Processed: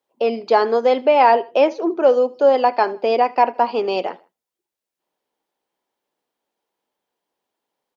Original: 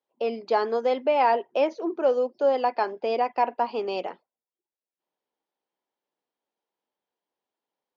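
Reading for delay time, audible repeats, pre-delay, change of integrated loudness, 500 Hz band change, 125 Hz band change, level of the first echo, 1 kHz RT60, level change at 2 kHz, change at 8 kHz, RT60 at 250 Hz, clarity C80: 78 ms, 2, none, +8.0 dB, +8.0 dB, n/a, -22.0 dB, none, +8.0 dB, n/a, none, none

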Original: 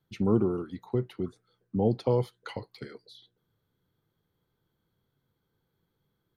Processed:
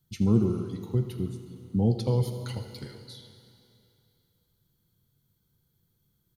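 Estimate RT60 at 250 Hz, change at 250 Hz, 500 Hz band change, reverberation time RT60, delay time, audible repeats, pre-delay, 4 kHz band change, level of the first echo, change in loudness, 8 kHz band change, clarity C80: 2.5 s, +2.5 dB, -3.5 dB, 2.7 s, 81 ms, 1, 3 ms, +4.5 dB, -14.5 dB, +1.5 dB, n/a, 7.5 dB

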